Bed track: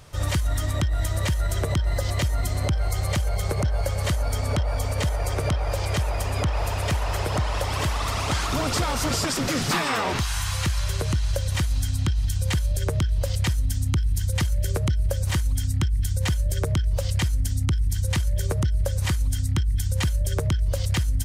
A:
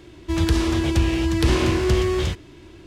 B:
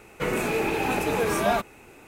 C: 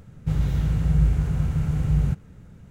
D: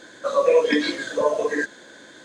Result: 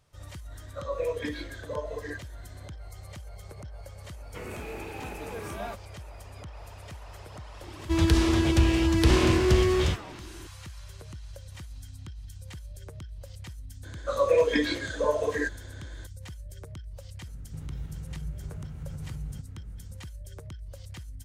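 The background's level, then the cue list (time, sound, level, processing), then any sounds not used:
bed track -19 dB
0.52 s: add D -13.5 dB + distance through air 71 m
4.14 s: add B -14 dB
7.61 s: add A -2 dB
13.83 s: add D -5 dB
17.27 s: add C -6 dB + compression 3:1, threshold -33 dBFS

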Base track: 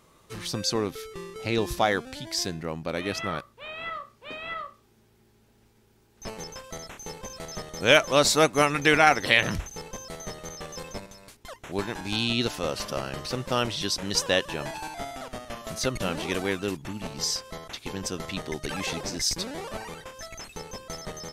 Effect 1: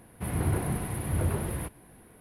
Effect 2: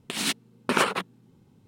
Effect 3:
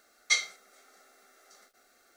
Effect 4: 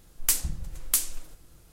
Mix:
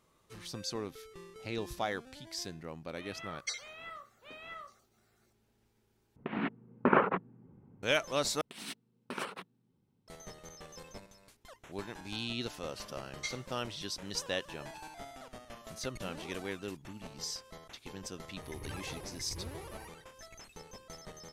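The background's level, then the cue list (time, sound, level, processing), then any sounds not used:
base track -11.5 dB
3.17 s: add 3 -9.5 dB + random holes in the spectrogram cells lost 31%
6.16 s: replace with 2 + Bessel low-pass 1.3 kHz, order 6
8.41 s: replace with 2 -16.5 dB + band-stop 6.9 kHz
12.93 s: add 3 -14 dB
18.21 s: add 1 -15 dB + static phaser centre 1 kHz, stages 8
not used: 4

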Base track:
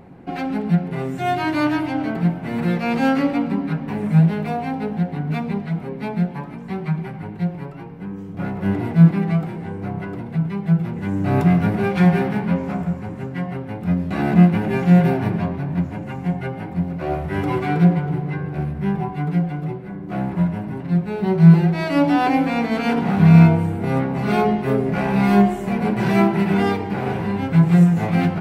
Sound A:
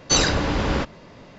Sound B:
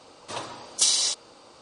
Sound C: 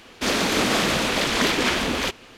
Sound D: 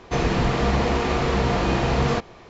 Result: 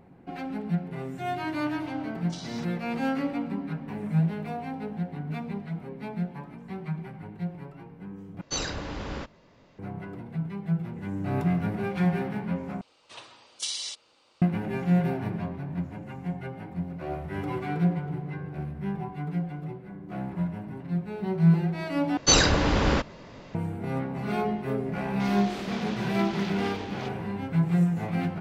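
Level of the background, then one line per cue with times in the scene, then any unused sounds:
base track -10 dB
1.51 s: add B -14 dB + distance through air 180 m
8.41 s: replace with A -12.5 dB
12.81 s: replace with B -16 dB + peaking EQ 2.8 kHz +11 dB 1.6 oct
22.17 s: replace with A -0.5 dB
24.98 s: add C -17.5 dB + low-pass 6 kHz 24 dB/octave
not used: D

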